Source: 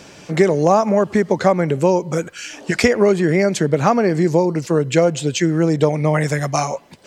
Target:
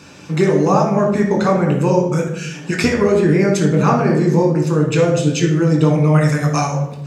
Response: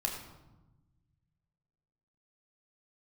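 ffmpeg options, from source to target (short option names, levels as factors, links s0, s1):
-filter_complex "[0:a]highpass=59[s0];[1:a]atrim=start_sample=2205,asetrate=61740,aresample=44100[s1];[s0][s1]afir=irnorm=-1:irlink=0"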